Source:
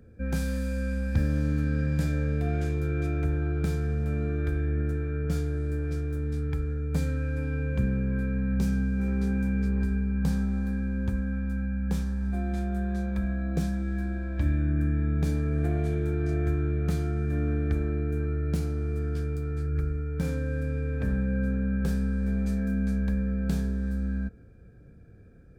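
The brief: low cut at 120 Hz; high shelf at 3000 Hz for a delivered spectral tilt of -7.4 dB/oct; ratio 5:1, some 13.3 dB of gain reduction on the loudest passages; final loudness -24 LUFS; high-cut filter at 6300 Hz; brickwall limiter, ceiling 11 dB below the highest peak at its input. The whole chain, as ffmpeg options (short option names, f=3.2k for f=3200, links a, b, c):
-af "highpass=120,lowpass=6.3k,highshelf=f=3k:g=-5.5,acompressor=threshold=-40dB:ratio=5,volume=23dB,alimiter=limit=-16dB:level=0:latency=1"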